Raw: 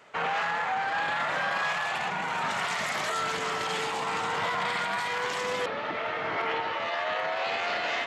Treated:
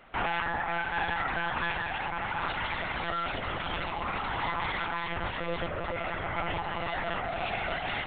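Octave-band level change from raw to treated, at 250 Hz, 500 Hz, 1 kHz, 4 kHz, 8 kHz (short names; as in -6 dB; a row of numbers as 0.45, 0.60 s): +2.0 dB, -3.5 dB, -3.0 dB, -4.0 dB, under -40 dB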